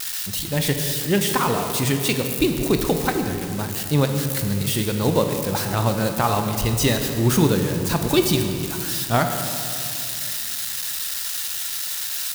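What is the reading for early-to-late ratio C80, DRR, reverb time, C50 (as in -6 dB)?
7.0 dB, 5.0 dB, 2.6 s, 6.0 dB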